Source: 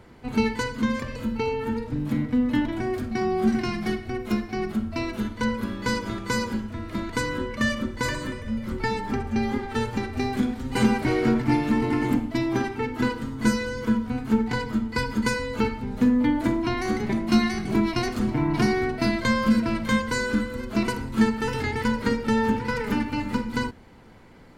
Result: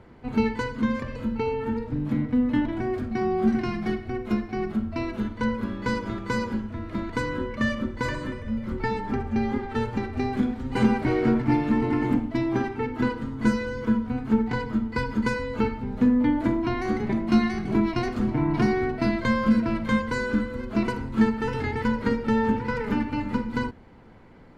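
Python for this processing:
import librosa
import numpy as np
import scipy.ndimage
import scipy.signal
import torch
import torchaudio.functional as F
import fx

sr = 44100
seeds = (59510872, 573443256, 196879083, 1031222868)

y = fx.lowpass(x, sr, hz=2000.0, slope=6)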